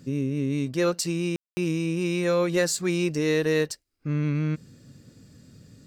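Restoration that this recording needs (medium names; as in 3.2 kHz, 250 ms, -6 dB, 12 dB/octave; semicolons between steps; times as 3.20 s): clip repair -13.5 dBFS; room tone fill 1.36–1.57 s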